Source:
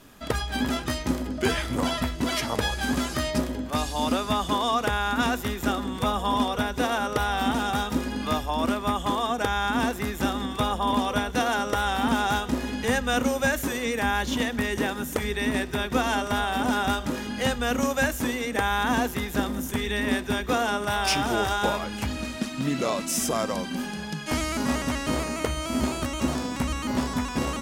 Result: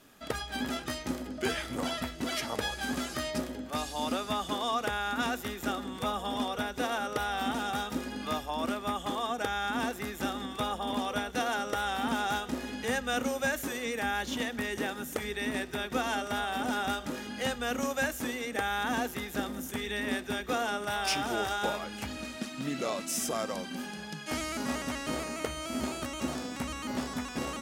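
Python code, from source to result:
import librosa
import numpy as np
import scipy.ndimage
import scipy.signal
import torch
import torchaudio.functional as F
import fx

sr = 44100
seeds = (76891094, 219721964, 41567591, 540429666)

y = fx.low_shelf(x, sr, hz=140.0, db=-10.0)
y = fx.notch(y, sr, hz=1000.0, q=12.0)
y = y * 10.0 ** (-5.5 / 20.0)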